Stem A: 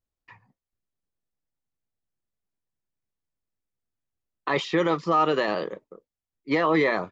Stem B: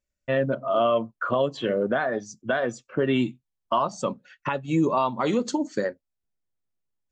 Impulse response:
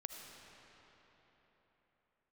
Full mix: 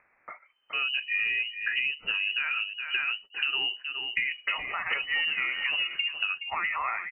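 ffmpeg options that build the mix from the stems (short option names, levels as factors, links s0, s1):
-filter_complex "[0:a]highpass=f=820:w=0.5412,highpass=f=820:w=1.3066,volume=1,asplit=2[s0][s1];[s1]volume=0.251[s2];[1:a]dynaudnorm=f=160:g=5:m=3.76,adelay=450,volume=0.398,asplit=2[s3][s4];[s4]volume=0.2[s5];[s2][s5]amix=inputs=2:normalize=0,aecho=0:1:419:1[s6];[s0][s3][s6]amix=inputs=3:normalize=0,acompressor=mode=upward:threshold=0.0224:ratio=2.5,lowpass=f=2600:t=q:w=0.5098,lowpass=f=2600:t=q:w=0.6013,lowpass=f=2600:t=q:w=0.9,lowpass=f=2600:t=q:w=2.563,afreqshift=-3100,acompressor=threshold=0.0501:ratio=6"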